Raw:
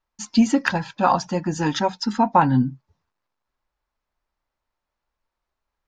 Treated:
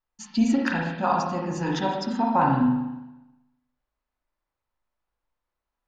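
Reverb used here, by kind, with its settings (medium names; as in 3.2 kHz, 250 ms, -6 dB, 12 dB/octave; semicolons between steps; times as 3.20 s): spring tank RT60 1 s, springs 36/40/60 ms, chirp 25 ms, DRR -1.5 dB; trim -7.5 dB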